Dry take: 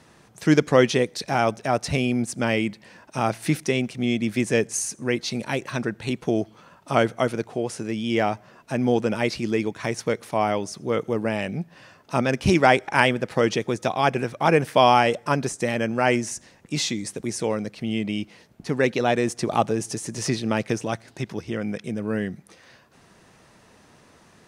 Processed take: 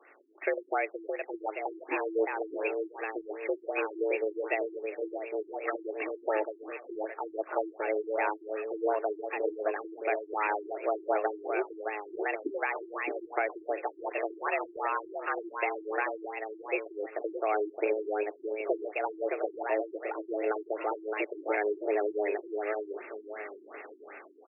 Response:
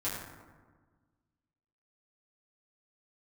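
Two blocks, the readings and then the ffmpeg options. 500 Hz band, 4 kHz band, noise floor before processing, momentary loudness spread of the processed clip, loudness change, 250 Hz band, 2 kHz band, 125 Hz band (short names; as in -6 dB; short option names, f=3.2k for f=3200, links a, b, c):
-6.5 dB, under -25 dB, -55 dBFS, 7 LU, -9.5 dB, -15.0 dB, -8.0 dB, under -40 dB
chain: -filter_complex "[0:a]lowshelf=f=68:g=-9.5,dynaudnorm=f=300:g=5:m=11.5dB,tiltshelf=f=1.3k:g=-6.5,afreqshift=210,acompressor=threshold=-19dB:ratio=6,alimiter=limit=-17dB:level=0:latency=1:release=300,bandreject=f=990:w=9.9,asplit=2[a][b];[b]aecho=0:1:617|1234|1851|2468:0.562|0.197|0.0689|0.0241[c];[a][c]amix=inputs=2:normalize=0,afftfilt=real='re*lt(b*sr/1024,380*pow(2800/380,0.5+0.5*sin(2*PI*2.7*pts/sr)))':imag='im*lt(b*sr/1024,380*pow(2800/380,0.5+0.5*sin(2*PI*2.7*pts/sr)))':win_size=1024:overlap=0.75"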